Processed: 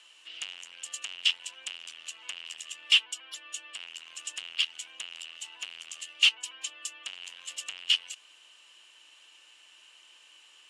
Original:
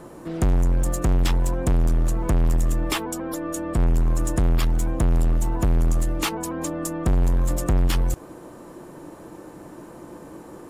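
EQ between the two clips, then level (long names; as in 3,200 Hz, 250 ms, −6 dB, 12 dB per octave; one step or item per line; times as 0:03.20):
high-pass with resonance 2,900 Hz, resonance Q 11
low-pass filter 8,400 Hz 24 dB per octave
−4.0 dB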